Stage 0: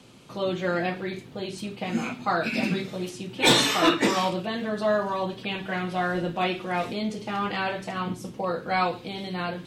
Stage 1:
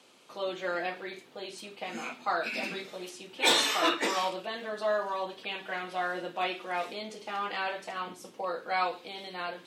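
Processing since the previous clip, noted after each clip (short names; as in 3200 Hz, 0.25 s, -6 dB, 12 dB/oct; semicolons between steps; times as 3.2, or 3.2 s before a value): HPF 440 Hz 12 dB/oct; gain -4 dB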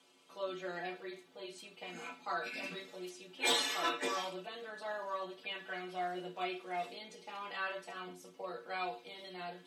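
metallic resonator 86 Hz, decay 0.22 s, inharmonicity 0.008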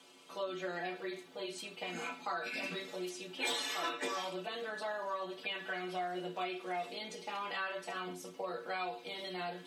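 compressor 3:1, threshold -44 dBFS, peak gain reduction 13 dB; gain +7 dB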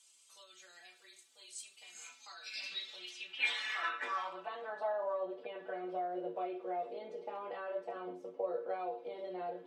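band-pass sweep 8000 Hz -> 510 Hz, 1.95–5.31; gain +6 dB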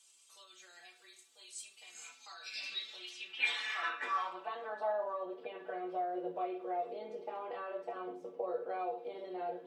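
reverb RT60 0.30 s, pre-delay 3 ms, DRR 8 dB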